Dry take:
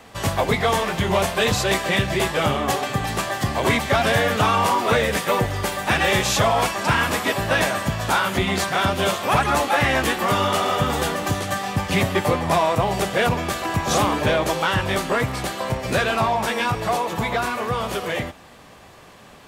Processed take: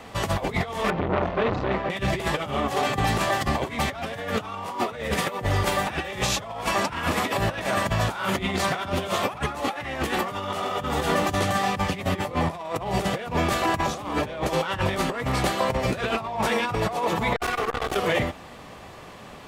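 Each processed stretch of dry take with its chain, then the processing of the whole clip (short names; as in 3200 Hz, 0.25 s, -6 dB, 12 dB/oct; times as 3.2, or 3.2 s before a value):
0.9–1.9 tape spacing loss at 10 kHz 41 dB + notches 50/100/150 Hz + core saturation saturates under 1100 Hz
17.36–17.96 minimum comb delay 2.6 ms + doubler 20 ms -13 dB + core saturation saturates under 660 Hz
whole clip: high shelf 4600 Hz -6 dB; notch 1600 Hz, Q 20; negative-ratio compressor -25 dBFS, ratio -0.5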